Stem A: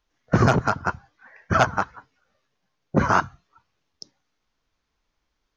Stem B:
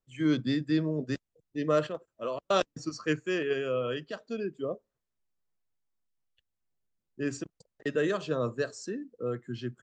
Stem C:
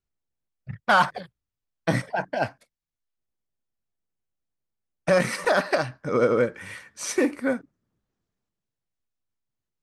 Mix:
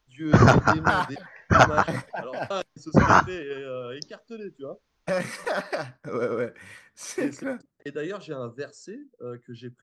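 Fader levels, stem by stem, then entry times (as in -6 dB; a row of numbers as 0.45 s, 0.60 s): +2.5 dB, -4.0 dB, -6.5 dB; 0.00 s, 0.00 s, 0.00 s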